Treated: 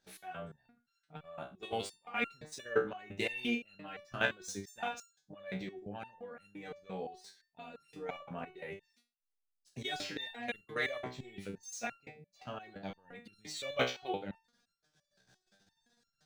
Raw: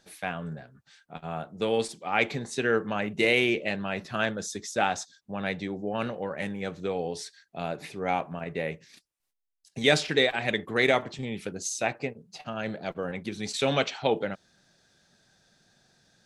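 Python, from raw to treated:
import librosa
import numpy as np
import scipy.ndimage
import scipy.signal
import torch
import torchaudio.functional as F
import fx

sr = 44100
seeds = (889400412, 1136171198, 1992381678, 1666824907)

y = scipy.ndimage.median_filter(x, 3, mode='constant')
y = fx.level_steps(y, sr, step_db=13)
y = fx.resonator_held(y, sr, hz=5.8, low_hz=63.0, high_hz=1400.0)
y = F.gain(torch.from_numpy(y), 7.0).numpy()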